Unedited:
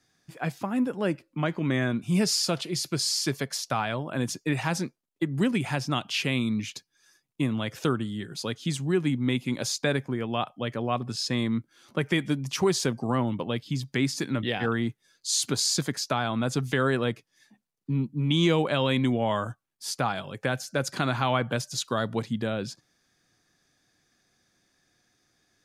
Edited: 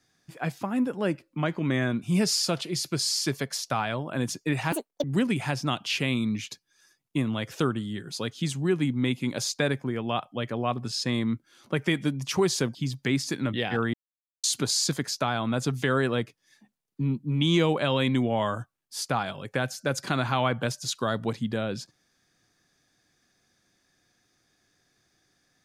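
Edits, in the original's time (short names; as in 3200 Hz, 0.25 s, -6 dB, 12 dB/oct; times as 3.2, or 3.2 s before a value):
4.72–5.28 speed 177%
12.99–13.64 cut
14.83–15.33 mute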